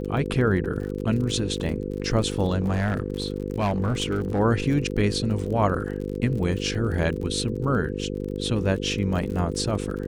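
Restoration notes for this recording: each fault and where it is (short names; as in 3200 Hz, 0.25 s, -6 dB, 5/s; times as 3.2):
buzz 50 Hz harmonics 10 -30 dBFS
crackle 40/s -32 dBFS
2.62–4.4 clipped -19.5 dBFS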